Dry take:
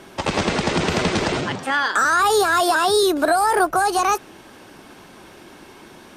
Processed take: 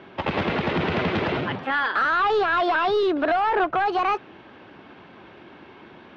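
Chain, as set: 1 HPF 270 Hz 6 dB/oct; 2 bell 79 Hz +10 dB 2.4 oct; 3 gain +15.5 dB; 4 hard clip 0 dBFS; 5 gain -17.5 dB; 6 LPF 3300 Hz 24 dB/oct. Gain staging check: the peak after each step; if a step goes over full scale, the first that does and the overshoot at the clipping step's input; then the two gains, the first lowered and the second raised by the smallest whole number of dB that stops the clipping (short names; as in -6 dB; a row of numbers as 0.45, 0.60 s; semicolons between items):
-7.5, -8.0, +7.5, 0.0, -17.5, -15.5 dBFS; step 3, 7.5 dB; step 3 +7.5 dB, step 5 -9.5 dB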